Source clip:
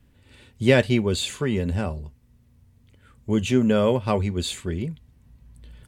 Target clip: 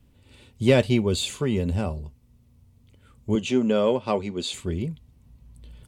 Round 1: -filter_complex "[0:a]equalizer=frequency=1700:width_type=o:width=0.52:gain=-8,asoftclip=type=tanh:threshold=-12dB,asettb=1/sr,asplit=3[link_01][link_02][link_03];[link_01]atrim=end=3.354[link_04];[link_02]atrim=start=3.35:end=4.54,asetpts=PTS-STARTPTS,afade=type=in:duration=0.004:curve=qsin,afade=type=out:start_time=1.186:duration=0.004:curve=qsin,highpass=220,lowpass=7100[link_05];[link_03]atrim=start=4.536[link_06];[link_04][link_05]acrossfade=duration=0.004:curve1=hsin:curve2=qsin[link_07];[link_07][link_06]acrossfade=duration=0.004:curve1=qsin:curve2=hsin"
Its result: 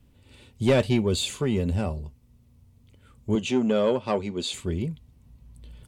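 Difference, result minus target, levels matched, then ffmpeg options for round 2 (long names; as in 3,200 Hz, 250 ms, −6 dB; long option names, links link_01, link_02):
soft clipping: distortion +14 dB
-filter_complex "[0:a]equalizer=frequency=1700:width_type=o:width=0.52:gain=-8,asoftclip=type=tanh:threshold=-2.5dB,asettb=1/sr,asplit=3[link_01][link_02][link_03];[link_01]atrim=end=3.354[link_04];[link_02]atrim=start=3.35:end=4.54,asetpts=PTS-STARTPTS,afade=type=in:duration=0.004:curve=qsin,afade=type=out:start_time=1.186:duration=0.004:curve=qsin,highpass=220,lowpass=7100[link_05];[link_03]atrim=start=4.536[link_06];[link_04][link_05]acrossfade=duration=0.004:curve1=hsin:curve2=qsin[link_07];[link_07][link_06]acrossfade=duration=0.004:curve1=qsin:curve2=hsin"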